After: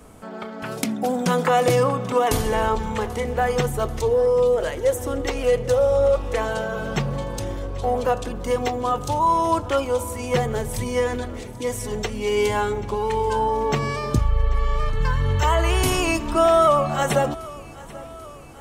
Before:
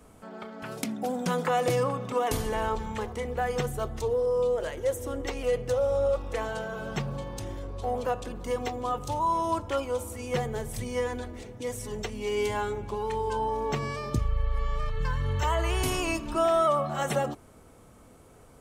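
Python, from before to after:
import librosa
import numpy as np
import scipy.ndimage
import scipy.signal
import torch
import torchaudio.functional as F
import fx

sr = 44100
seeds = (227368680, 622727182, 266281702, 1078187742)

y = fx.echo_feedback(x, sr, ms=787, feedback_pct=59, wet_db=-20.0)
y = y * 10.0 ** (7.5 / 20.0)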